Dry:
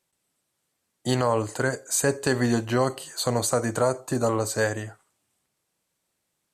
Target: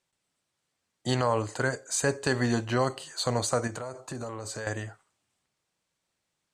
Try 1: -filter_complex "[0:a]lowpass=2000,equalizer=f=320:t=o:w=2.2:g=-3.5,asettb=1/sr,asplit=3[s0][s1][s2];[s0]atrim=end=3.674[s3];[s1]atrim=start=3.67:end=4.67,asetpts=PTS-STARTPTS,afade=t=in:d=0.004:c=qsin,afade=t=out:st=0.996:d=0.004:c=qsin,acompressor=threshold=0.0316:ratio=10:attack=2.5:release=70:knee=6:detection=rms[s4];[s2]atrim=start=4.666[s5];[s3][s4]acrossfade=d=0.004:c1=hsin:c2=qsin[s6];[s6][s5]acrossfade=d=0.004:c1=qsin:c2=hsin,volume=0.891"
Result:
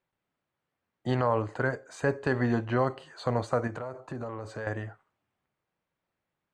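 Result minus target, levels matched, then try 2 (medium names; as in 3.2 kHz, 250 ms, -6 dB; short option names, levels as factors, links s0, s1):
8 kHz band -19.0 dB
-filter_complex "[0:a]lowpass=7100,equalizer=f=320:t=o:w=2.2:g=-3.5,asettb=1/sr,asplit=3[s0][s1][s2];[s0]atrim=end=3.674[s3];[s1]atrim=start=3.67:end=4.67,asetpts=PTS-STARTPTS,afade=t=in:d=0.004:c=qsin,afade=t=out:st=0.996:d=0.004:c=qsin,acompressor=threshold=0.0316:ratio=10:attack=2.5:release=70:knee=6:detection=rms[s4];[s2]atrim=start=4.666[s5];[s3][s4]acrossfade=d=0.004:c1=hsin:c2=qsin[s6];[s6][s5]acrossfade=d=0.004:c1=qsin:c2=hsin,volume=0.891"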